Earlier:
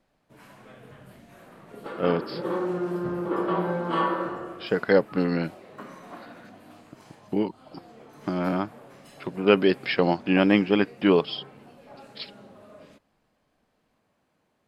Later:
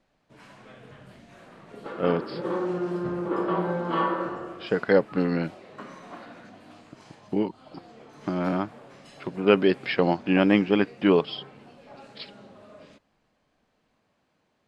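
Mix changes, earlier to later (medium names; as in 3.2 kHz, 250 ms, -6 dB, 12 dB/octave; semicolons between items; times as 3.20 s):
first sound: add treble shelf 3.6 kHz +10.5 dB; master: add distance through air 100 m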